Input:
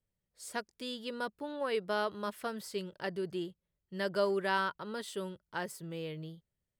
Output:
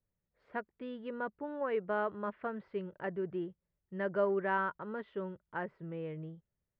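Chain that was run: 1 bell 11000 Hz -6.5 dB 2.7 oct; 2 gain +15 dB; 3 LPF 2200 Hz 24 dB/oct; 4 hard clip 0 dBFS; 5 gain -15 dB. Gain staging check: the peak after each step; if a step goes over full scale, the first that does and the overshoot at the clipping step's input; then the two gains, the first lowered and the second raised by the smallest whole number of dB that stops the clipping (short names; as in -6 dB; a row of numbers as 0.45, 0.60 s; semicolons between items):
-21.0, -6.0, -5.0, -5.0, -20.0 dBFS; no overload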